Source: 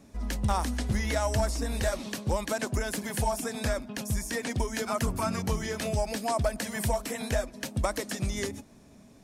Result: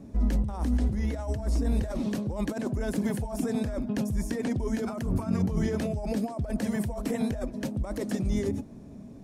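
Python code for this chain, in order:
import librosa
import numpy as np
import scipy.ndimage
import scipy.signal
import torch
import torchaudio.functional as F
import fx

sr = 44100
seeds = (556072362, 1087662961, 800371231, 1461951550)

y = fx.low_shelf(x, sr, hz=88.0, db=-5.0)
y = fx.over_compress(y, sr, threshold_db=-34.0, ratio=-1.0)
y = fx.tilt_shelf(y, sr, db=9.5, hz=730.0)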